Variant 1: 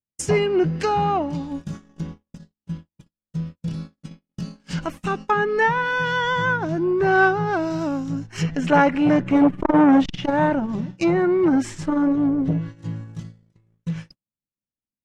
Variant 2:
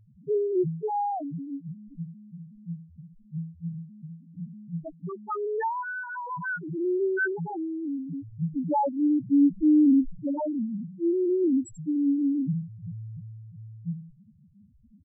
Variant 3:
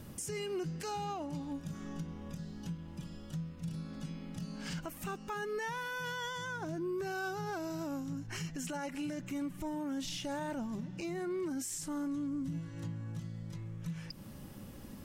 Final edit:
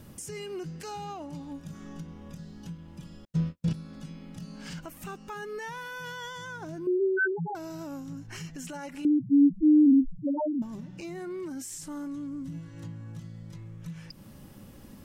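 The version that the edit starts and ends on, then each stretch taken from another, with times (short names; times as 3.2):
3
3.25–3.73 from 1
6.87–7.55 from 2
9.05–10.62 from 2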